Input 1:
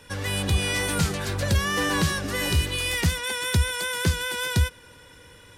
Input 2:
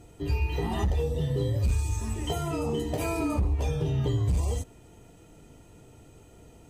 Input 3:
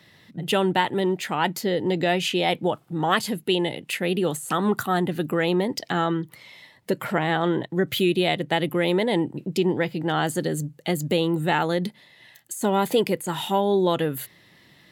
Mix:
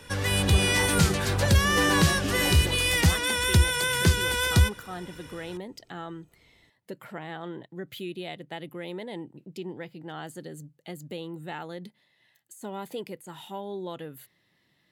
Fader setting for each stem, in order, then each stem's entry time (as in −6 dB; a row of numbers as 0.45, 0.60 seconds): +2.0, −13.5, −15.0 decibels; 0.00, 0.00, 0.00 seconds